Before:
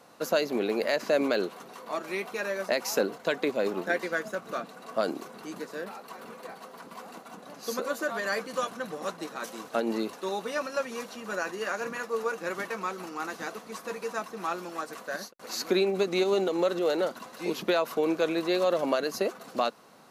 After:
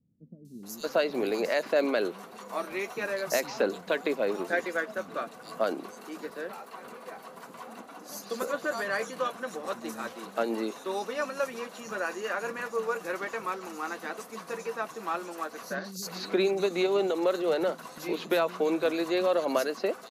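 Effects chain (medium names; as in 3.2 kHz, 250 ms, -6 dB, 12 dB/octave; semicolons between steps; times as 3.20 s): three bands offset in time lows, highs, mids 450/630 ms, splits 190/4700 Hz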